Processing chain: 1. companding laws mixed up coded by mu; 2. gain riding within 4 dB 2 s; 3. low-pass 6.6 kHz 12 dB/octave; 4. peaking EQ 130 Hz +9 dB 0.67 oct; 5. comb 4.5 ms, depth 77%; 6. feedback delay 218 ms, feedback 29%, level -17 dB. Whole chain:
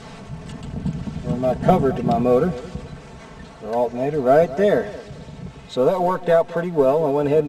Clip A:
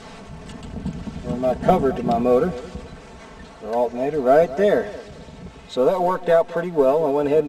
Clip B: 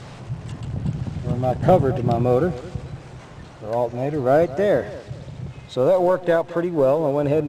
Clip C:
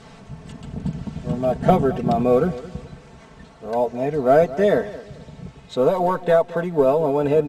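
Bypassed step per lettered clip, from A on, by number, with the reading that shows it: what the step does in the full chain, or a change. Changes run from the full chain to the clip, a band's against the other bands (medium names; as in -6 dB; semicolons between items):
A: 4, 125 Hz band -5.0 dB; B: 5, 125 Hz band +3.5 dB; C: 1, distortion -27 dB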